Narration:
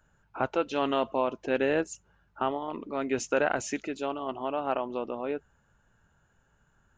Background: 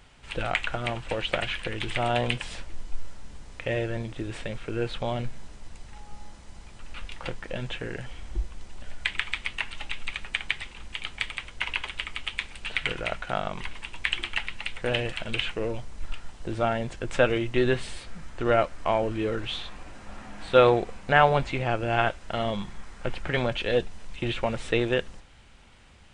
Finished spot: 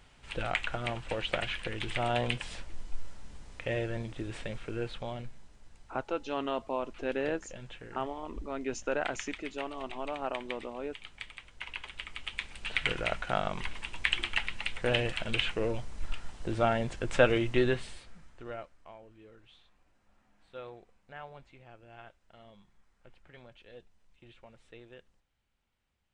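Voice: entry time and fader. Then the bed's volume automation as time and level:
5.55 s, -6.0 dB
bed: 4.61 s -4.5 dB
5.48 s -13 dB
11.49 s -13 dB
12.88 s -1.5 dB
17.52 s -1.5 dB
18.98 s -27 dB

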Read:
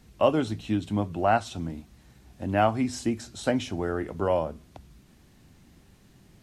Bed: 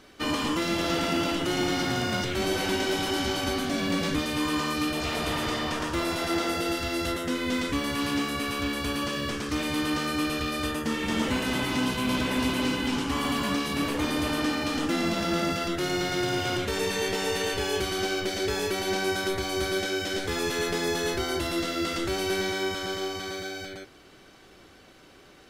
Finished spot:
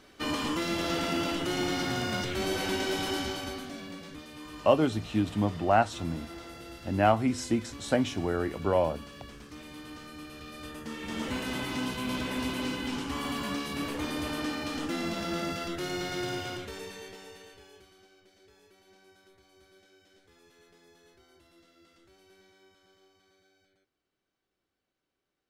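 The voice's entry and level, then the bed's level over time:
4.45 s, -0.5 dB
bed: 3.13 s -3.5 dB
4.04 s -17.5 dB
10.26 s -17.5 dB
11.36 s -6 dB
16.31 s -6 dB
18.1 s -32.5 dB

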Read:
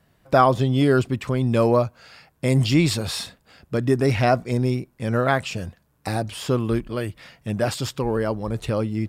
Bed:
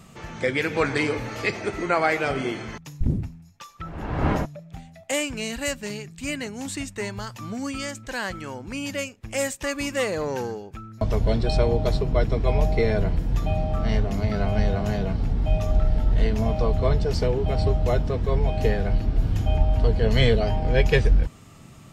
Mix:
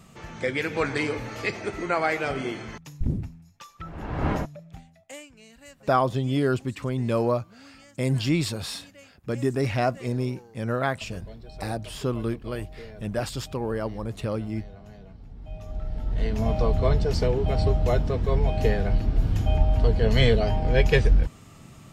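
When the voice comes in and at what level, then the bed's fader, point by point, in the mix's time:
5.55 s, -5.5 dB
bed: 4.71 s -3 dB
5.31 s -21 dB
15.25 s -21 dB
16.51 s -0.5 dB

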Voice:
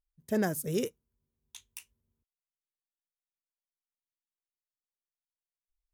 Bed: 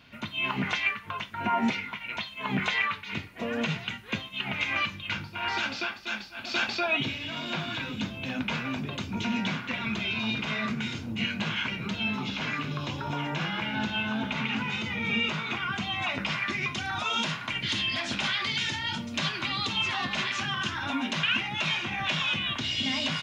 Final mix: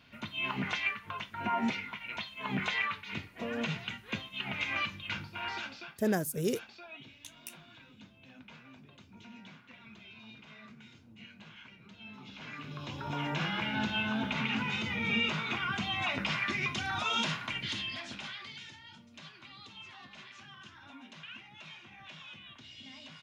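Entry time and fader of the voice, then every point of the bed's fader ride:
5.70 s, -0.5 dB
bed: 5.37 s -5 dB
6.18 s -22 dB
11.9 s -22 dB
13.26 s -2.5 dB
17.34 s -2.5 dB
18.86 s -21 dB

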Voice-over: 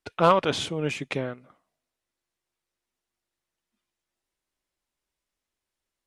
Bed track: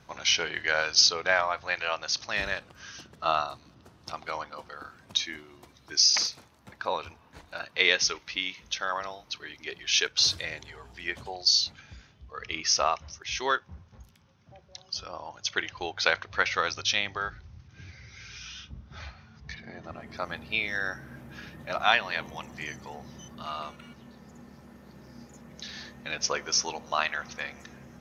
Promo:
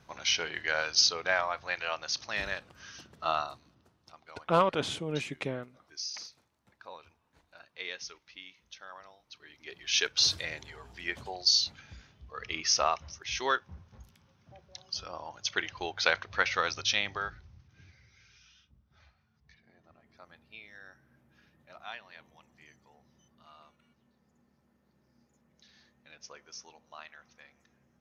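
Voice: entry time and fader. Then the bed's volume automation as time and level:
4.30 s, -5.5 dB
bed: 3.46 s -4 dB
4.12 s -17 dB
9.19 s -17 dB
10.03 s -2 dB
17.15 s -2 dB
18.64 s -20.5 dB

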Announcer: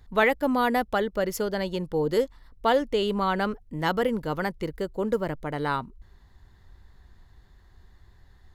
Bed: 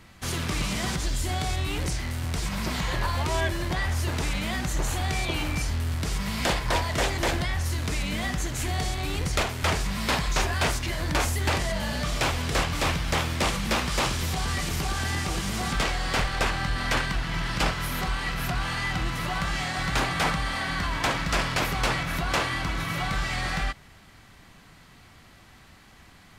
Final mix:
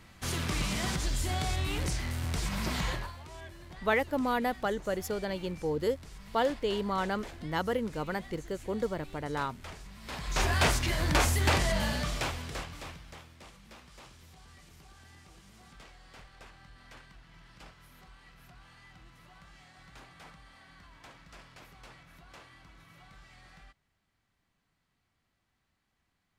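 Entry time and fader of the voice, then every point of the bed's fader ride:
3.70 s, -6.0 dB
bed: 2.89 s -3.5 dB
3.18 s -20.5 dB
10.01 s -20.5 dB
10.48 s -0.5 dB
11.83 s -0.5 dB
13.35 s -27 dB

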